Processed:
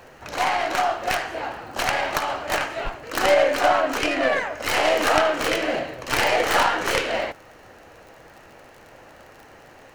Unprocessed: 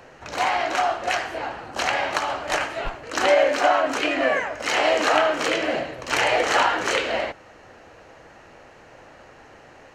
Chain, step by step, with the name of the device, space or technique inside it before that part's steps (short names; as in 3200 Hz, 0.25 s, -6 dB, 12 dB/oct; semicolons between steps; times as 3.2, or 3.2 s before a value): record under a worn stylus (tracing distortion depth 0.14 ms; crackle 36/s -37 dBFS; pink noise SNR 38 dB)